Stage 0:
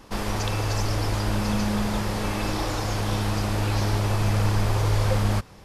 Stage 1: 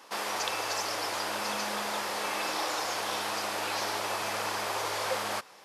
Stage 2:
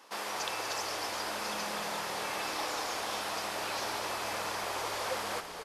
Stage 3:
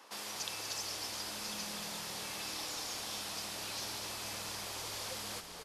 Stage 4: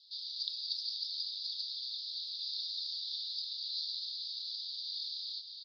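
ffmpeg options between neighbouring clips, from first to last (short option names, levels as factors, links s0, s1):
-af "highpass=610"
-filter_complex "[0:a]asplit=8[s0][s1][s2][s3][s4][s5][s6][s7];[s1]adelay=241,afreqshift=-39,volume=0.376[s8];[s2]adelay=482,afreqshift=-78,volume=0.219[s9];[s3]adelay=723,afreqshift=-117,volume=0.126[s10];[s4]adelay=964,afreqshift=-156,volume=0.0733[s11];[s5]adelay=1205,afreqshift=-195,volume=0.0427[s12];[s6]adelay=1446,afreqshift=-234,volume=0.0245[s13];[s7]adelay=1687,afreqshift=-273,volume=0.0143[s14];[s0][s8][s9][s10][s11][s12][s13][s14]amix=inputs=8:normalize=0,volume=0.631"
-filter_complex "[0:a]acrossover=split=250|3000[s0][s1][s2];[s1]acompressor=threshold=0.00141:ratio=2[s3];[s0][s3][s2]amix=inputs=3:normalize=0"
-af "asuperpass=centerf=4200:order=8:qfactor=3.2,volume=2.66"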